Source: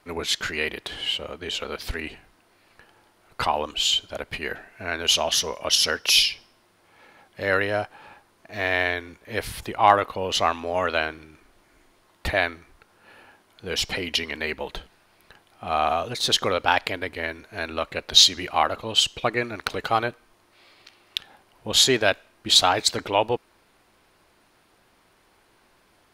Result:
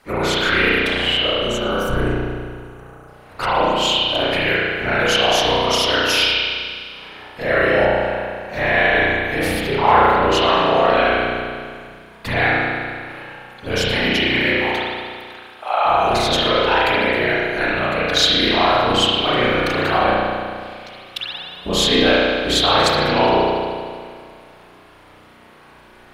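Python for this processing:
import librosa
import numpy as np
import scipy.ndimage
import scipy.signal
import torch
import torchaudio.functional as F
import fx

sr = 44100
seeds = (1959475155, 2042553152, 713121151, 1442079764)

p1 = fx.spec_box(x, sr, start_s=1.24, length_s=1.84, low_hz=1600.0, high_hz=5600.0, gain_db=-16)
p2 = fx.highpass(p1, sr, hz=610.0, slope=24, at=(14.52, 15.85))
p3 = fx.over_compress(p2, sr, threshold_db=-30.0, ratio=-1.0)
p4 = p2 + (p3 * librosa.db_to_amplitude(0.5))
p5 = fx.whisperise(p4, sr, seeds[0])
p6 = fx.quant_companded(p5, sr, bits=8, at=(19.21, 20.01))
p7 = p6 + fx.echo_single(p6, sr, ms=113, db=-21.5, dry=0)
p8 = fx.rev_spring(p7, sr, rt60_s=2.0, pass_ms=(33,), chirp_ms=45, drr_db=-9.5)
y = p8 * librosa.db_to_amplitude(-4.5)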